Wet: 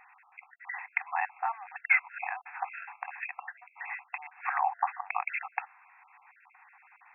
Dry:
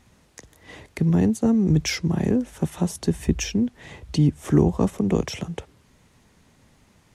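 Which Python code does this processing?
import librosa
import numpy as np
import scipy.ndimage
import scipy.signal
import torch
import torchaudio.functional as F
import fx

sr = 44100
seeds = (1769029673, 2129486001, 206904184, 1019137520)

y = fx.spec_dropout(x, sr, seeds[0], share_pct=31)
y = fx.brickwall_bandpass(y, sr, low_hz=710.0, high_hz=2700.0)
y = y * librosa.db_to_amplitude(9.0)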